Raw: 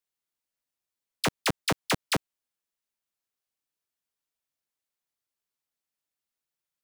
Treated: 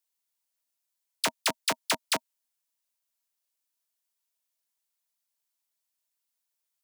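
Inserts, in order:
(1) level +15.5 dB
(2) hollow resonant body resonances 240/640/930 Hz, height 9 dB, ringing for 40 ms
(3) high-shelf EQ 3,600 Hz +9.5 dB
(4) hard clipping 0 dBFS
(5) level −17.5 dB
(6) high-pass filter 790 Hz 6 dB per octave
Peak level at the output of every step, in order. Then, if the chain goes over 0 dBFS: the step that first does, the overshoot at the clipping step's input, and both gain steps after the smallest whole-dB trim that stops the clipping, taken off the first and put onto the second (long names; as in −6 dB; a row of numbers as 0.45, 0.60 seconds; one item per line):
−3.0, +2.5, +7.0, 0.0, −17.5, −12.0 dBFS
step 2, 7.0 dB
step 1 +8.5 dB, step 5 −10.5 dB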